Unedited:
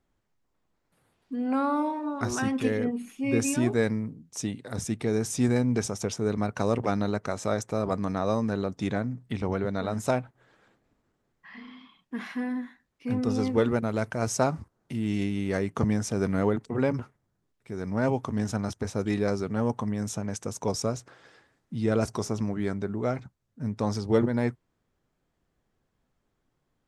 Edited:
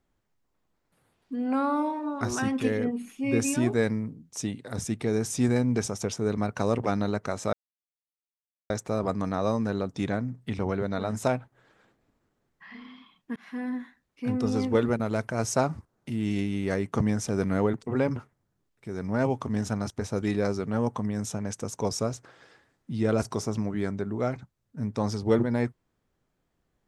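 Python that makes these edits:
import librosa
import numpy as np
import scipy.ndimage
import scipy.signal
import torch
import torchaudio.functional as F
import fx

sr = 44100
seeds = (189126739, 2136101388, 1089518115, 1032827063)

y = fx.edit(x, sr, fx.insert_silence(at_s=7.53, length_s=1.17),
    fx.fade_in_span(start_s=12.19, length_s=0.44, curve='qsin'), tone=tone)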